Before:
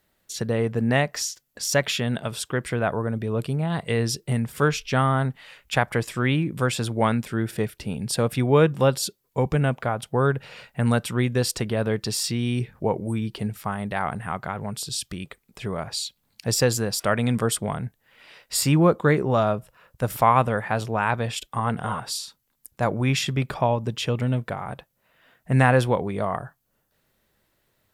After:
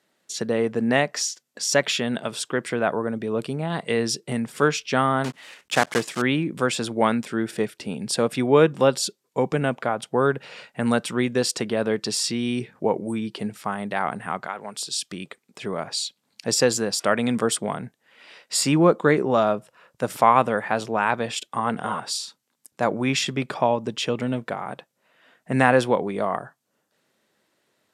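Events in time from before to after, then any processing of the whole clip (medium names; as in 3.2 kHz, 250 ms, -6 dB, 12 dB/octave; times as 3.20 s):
5.24–6.22 s: block-companded coder 3-bit
14.45–15.10 s: high-pass 730 Hz -> 340 Hz 6 dB/octave
whole clip: Chebyshev band-pass 240–8100 Hz, order 2; trim +2.5 dB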